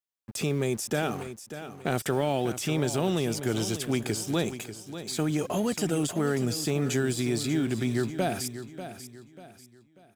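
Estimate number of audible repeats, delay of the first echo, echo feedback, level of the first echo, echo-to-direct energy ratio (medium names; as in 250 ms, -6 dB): 3, 591 ms, 36%, -11.5 dB, -11.0 dB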